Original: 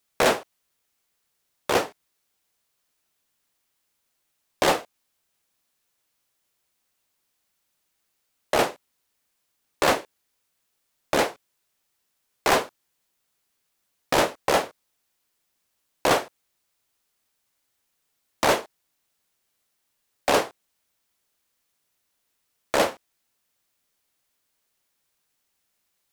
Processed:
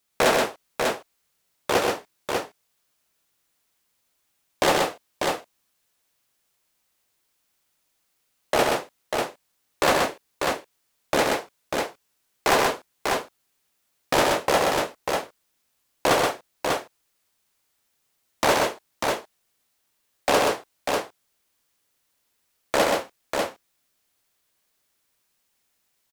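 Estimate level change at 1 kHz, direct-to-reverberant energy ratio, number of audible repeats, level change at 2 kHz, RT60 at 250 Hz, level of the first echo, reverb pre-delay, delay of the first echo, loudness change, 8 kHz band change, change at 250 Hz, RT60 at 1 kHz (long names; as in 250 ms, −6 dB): +3.0 dB, no reverb audible, 3, +3.0 dB, no reverb audible, −10.5 dB, no reverb audible, 89 ms, −0.5 dB, +3.0 dB, +2.5 dB, no reverb audible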